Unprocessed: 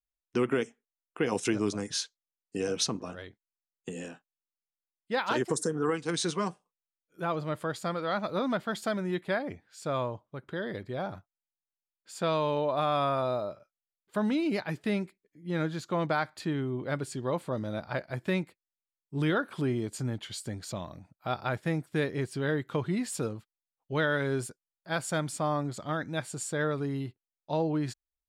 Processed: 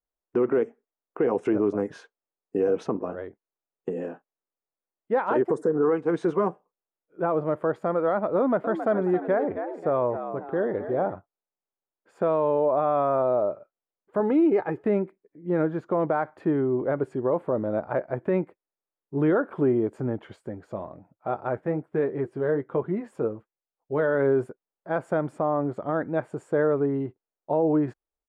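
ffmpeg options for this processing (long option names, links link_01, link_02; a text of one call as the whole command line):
ffmpeg -i in.wav -filter_complex "[0:a]asettb=1/sr,asplit=3[link_01][link_02][link_03];[link_01]atrim=end=8.374[link_04];[link_02]atrim=start=8.37:end=11.13,asetpts=PTS-STARTPTS,afade=type=in:duration=0.004:curve=qsin,afade=type=out:start_time=2.756:duration=0.004:curve=qsin,asplit=5[link_05][link_06][link_07][link_08][link_09];[link_06]adelay=269,afreqshift=77,volume=-11dB[link_10];[link_07]adelay=538,afreqshift=154,volume=-18.5dB[link_11];[link_08]adelay=807,afreqshift=231,volume=-26.1dB[link_12];[link_09]adelay=1076,afreqshift=308,volume=-33.6dB[link_13];[link_05][link_10][link_11][link_12][link_13]amix=inputs=5:normalize=0,atrim=end_sample=121716[link_14];[link_03]atrim=start=11.126[link_15];[link_04][link_14]acrossfade=duration=0.004:curve1=hsin:curve2=qsin[link_16];[link_16][link_15]acrossfade=duration=0.004:curve1=qsin:curve2=hsin,asettb=1/sr,asplit=3[link_17][link_18][link_19];[link_17]atrim=end=14.204[link_20];[link_18]atrim=start=14.2:end=14.84,asetpts=PTS-STARTPTS,afade=type=in:duration=0.004:curve=qsin,afade=type=out:start_time=0.636:duration=0.004:curve=qsin,aecho=1:1:2.4:0.48,atrim=end_sample=28224[link_21];[link_19]atrim=start=14.836[link_22];[link_20][link_21]acrossfade=duration=0.004:curve1=hsin:curve2=qsin[link_23];[link_23][link_22]acrossfade=duration=0.004:curve1=qsin:curve2=hsin,asettb=1/sr,asplit=3[link_24][link_25][link_26];[link_24]atrim=end=20.364[link_27];[link_25]atrim=start=20.36:end=24.15,asetpts=PTS-STARTPTS,afade=type=in:duration=0.004:curve=qsin,afade=type=out:start_time=3.786:duration=0.004:curve=qsin,flanger=delay=4.1:depth=5.1:regen=-56:speed=1.2:shape=triangular[link_28];[link_26]atrim=start=24.146[link_29];[link_27][link_28]acrossfade=duration=0.004:curve1=hsin:curve2=qsin[link_30];[link_30][link_29]acrossfade=duration=0.004:curve1=qsin:curve2=hsin,firequalizer=gain_entry='entry(110,0);entry(400,12);entry(4100,-23)':delay=0.05:min_phase=1,alimiter=limit=-14.5dB:level=0:latency=1:release=49" out.wav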